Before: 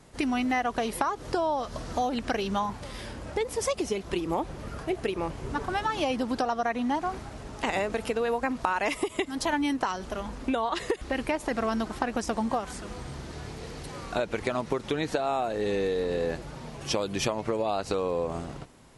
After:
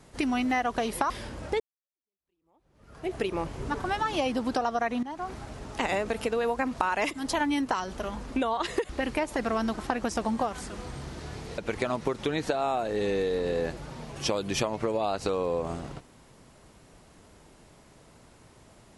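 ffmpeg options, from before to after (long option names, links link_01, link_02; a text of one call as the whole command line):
ffmpeg -i in.wav -filter_complex "[0:a]asplit=6[link_01][link_02][link_03][link_04][link_05][link_06];[link_01]atrim=end=1.102[link_07];[link_02]atrim=start=2.938:end=3.44,asetpts=PTS-STARTPTS,afade=type=out:start_time=0.498:duration=0.004:curve=hsin[link_08];[link_03]atrim=start=3.44:end=6.87,asetpts=PTS-STARTPTS,afade=type=in:duration=1.52:curve=exp,afade=type=out:start_time=3.426:duration=0.004:curve=hsin:silence=0.158489[link_09];[link_04]atrim=start=6.87:end=8.952,asetpts=PTS-STARTPTS,afade=type=in:duration=0.38:silence=0.158489[link_10];[link_05]atrim=start=9.228:end=13.702[link_11];[link_06]atrim=start=14.228[link_12];[link_08][link_09][link_10]concat=n=3:v=0:a=1[link_13];[link_07][link_13]acrossfade=duration=0.004:curve1=hsin:curve2=hsin[link_14];[link_14][link_11]acrossfade=duration=0.004:curve1=hsin:curve2=hsin[link_15];[link_15][link_12]acrossfade=duration=0.004:curve1=hsin:curve2=hsin" out.wav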